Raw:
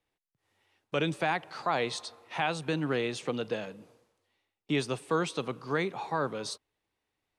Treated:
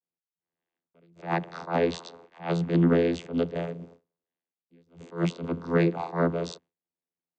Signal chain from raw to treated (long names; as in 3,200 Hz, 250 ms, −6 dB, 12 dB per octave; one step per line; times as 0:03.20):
channel vocoder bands 16, saw 84.9 Hz
noise gate with hold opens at −50 dBFS
level that may rise only so fast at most 190 dB per second
level +9 dB